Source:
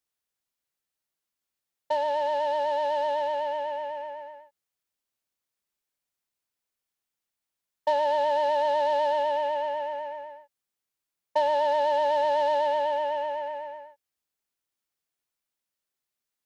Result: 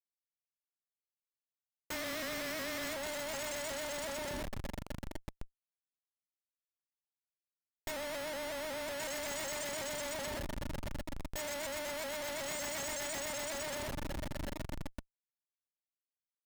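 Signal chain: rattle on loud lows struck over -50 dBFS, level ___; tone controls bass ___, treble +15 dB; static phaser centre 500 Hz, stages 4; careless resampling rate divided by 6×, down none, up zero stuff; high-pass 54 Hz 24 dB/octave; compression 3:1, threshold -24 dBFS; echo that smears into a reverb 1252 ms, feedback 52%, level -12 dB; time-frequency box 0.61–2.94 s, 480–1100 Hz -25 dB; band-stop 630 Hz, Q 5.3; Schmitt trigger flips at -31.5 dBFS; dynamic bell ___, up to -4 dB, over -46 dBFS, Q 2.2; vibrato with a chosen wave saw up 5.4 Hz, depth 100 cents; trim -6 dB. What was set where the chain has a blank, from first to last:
-34 dBFS, -6 dB, 520 Hz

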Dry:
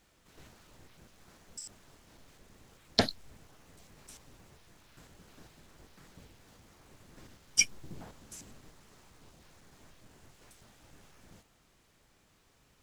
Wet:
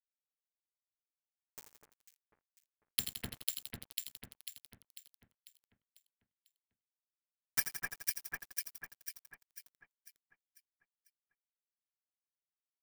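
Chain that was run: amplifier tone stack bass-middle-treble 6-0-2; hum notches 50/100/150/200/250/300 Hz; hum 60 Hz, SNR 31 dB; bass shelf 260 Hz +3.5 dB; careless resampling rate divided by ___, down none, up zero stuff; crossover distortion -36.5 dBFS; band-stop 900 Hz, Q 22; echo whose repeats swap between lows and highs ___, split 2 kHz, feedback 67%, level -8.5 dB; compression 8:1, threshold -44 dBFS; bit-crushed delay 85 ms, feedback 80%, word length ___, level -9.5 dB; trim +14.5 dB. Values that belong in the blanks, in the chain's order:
6×, 248 ms, 10-bit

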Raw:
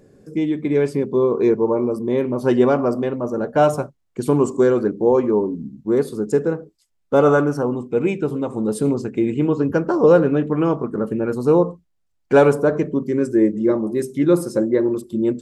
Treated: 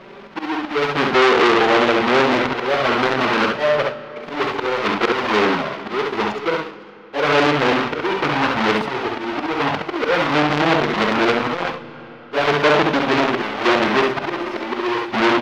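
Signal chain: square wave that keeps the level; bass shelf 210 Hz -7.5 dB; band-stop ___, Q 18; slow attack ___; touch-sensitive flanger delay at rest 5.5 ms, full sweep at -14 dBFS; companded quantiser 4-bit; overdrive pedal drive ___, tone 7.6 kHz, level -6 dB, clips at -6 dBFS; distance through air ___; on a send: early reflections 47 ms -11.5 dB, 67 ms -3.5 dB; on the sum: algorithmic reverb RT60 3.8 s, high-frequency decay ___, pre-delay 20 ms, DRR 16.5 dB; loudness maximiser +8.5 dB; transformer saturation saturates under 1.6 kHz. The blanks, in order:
1.7 kHz, 444 ms, 11 dB, 280 m, 0.75×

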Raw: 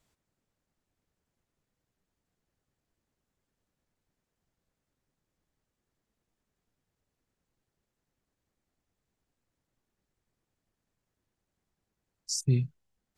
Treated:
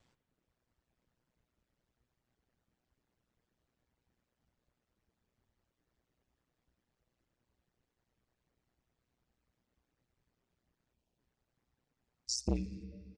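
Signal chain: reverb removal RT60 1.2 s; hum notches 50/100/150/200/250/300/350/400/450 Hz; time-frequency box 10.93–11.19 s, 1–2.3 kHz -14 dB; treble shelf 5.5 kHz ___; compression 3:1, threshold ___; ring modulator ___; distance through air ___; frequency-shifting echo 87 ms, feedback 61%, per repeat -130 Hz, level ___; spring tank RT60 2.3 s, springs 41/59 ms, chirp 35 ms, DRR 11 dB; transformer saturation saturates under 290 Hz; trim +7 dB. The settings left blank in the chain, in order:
+2 dB, -31 dBFS, 61 Hz, 98 m, -20.5 dB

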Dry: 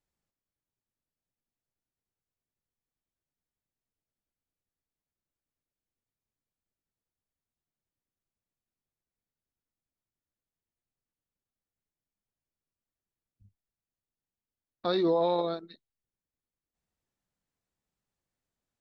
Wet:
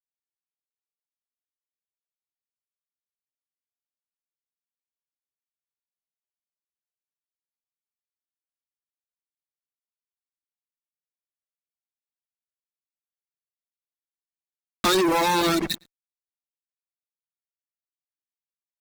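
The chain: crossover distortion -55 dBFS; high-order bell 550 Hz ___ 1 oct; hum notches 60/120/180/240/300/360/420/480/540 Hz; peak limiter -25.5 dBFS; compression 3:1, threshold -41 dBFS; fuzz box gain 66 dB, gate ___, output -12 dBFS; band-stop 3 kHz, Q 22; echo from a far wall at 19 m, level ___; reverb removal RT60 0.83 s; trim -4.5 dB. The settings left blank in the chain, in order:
-10.5 dB, -58 dBFS, -18 dB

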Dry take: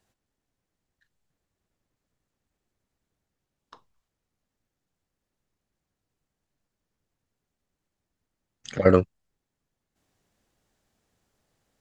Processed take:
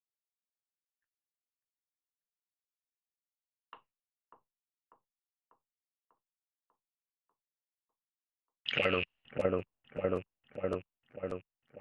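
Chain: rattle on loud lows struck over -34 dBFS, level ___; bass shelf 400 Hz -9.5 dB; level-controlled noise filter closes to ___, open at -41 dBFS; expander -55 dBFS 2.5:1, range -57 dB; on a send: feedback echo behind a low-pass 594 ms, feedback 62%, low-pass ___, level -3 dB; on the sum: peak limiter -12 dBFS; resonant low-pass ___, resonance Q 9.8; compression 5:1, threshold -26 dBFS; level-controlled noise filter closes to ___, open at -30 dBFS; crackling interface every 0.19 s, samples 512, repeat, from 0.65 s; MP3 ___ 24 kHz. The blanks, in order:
-27 dBFS, 2.2 kHz, 880 Hz, 2.8 kHz, 1.5 kHz, 56 kbps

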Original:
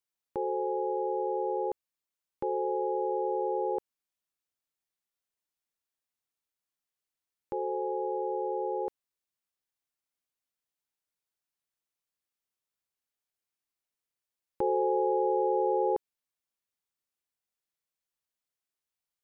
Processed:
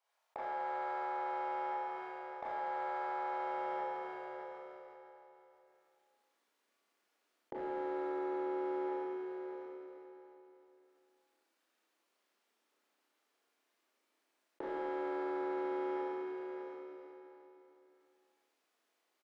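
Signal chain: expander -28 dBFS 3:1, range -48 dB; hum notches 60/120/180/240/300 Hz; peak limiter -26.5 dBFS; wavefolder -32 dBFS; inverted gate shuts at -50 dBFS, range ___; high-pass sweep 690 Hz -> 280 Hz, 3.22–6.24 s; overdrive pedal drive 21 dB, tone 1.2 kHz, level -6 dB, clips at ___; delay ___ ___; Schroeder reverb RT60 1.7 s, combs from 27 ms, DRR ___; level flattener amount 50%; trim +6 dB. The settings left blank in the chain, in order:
-31 dB, -41 dBFS, 608 ms, -14.5 dB, -8.5 dB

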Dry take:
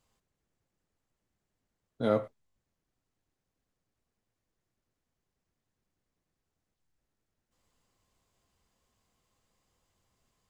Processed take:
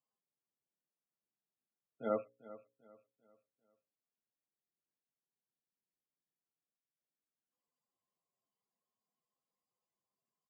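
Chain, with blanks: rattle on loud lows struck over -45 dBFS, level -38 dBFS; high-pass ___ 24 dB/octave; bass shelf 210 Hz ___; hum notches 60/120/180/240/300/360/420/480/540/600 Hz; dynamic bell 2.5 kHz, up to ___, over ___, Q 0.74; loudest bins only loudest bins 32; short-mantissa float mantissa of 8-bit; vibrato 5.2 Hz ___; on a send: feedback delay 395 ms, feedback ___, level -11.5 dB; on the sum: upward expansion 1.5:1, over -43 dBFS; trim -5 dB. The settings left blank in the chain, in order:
120 Hz, -7.5 dB, +3 dB, -50 dBFS, 5.1 cents, 40%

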